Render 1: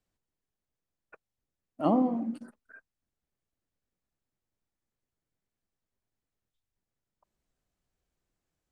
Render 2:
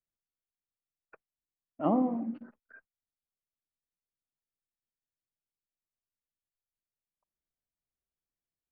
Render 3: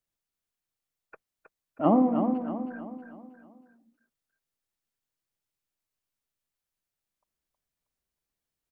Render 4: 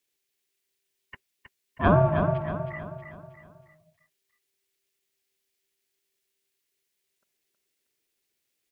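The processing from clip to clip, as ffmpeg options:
-af "lowpass=f=2600:w=0.5412,lowpass=f=2600:w=1.3066,agate=range=0.2:threshold=0.00126:ratio=16:detection=peak,volume=0.794"
-af "aecho=1:1:318|636|954|1272|1590:0.447|0.197|0.0865|0.0381|0.0167,volume=1.88"
-af "aeval=exprs='val(0)*sin(2*PI*390*n/s)':c=same,highshelf=f=1600:t=q:w=1.5:g=7.5,volume=1.78"

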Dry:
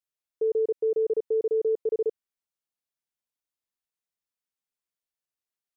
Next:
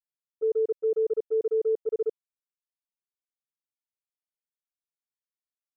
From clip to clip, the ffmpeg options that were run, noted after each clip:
-af "agate=range=0.178:threshold=0.0501:ratio=16:detection=peak"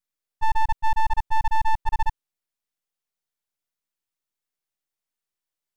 -af "aeval=exprs='abs(val(0))':c=same,volume=2.37"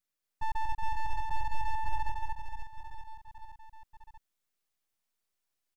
-af "alimiter=limit=0.0631:level=0:latency=1:release=83,aecho=1:1:230|529|917.7|1423|2080:0.631|0.398|0.251|0.158|0.1"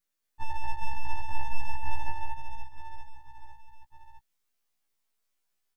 -af "afftfilt=real='re*1.73*eq(mod(b,3),0)':imag='im*1.73*eq(mod(b,3),0)':win_size=2048:overlap=0.75,volume=1.78"

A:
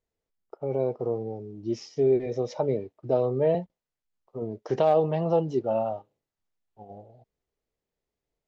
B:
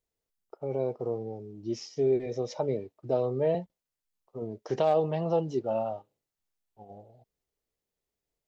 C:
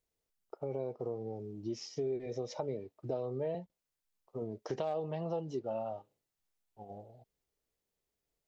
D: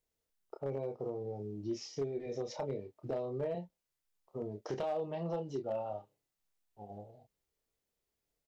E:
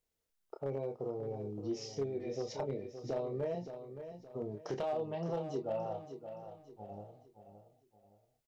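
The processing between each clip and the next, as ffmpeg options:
-af "highshelf=f=4100:g=7.5,volume=0.668"
-af "acompressor=threshold=0.0158:ratio=3"
-filter_complex "[0:a]asplit=2[s0][s1];[s1]adelay=29,volume=0.501[s2];[s0][s2]amix=inputs=2:normalize=0,volume=25.1,asoftclip=hard,volume=0.0398,volume=0.891"
-af "aecho=1:1:570|1140|1710|2280:0.316|0.117|0.0433|0.016"

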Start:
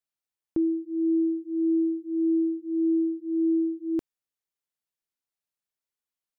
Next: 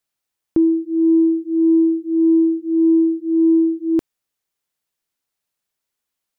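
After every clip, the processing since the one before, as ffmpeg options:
-af "acontrast=79,volume=1.41"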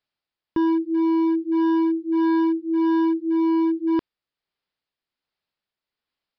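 -af "tremolo=f=1.3:d=0.34,aresample=11025,volume=7.94,asoftclip=hard,volume=0.126,aresample=44100"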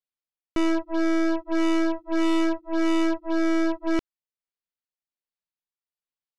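-af "aeval=exprs='if(lt(val(0),0),0.708*val(0),val(0))':c=same,aeval=exprs='0.133*(cos(1*acos(clip(val(0)/0.133,-1,1)))-cos(1*PI/2))+0.0531*(cos(3*acos(clip(val(0)/0.133,-1,1)))-cos(3*PI/2))+0.015*(cos(6*acos(clip(val(0)/0.133,-1,1)))-cos(6*PI/2))+0.00841*(cos(8*acos(clip(val(0)/0.133,-1,1)))-cos(8*PI/2))':c=same"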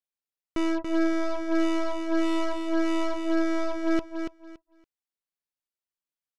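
-af "aecho=1:1:283|566|849:0.501|0.105|0.0221,volume=0.668"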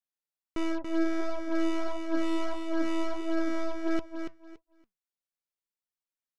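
-af "flanger=delay=1.3:depth=4.7:regen=83:speed=1.5:shape=sinusoidal"

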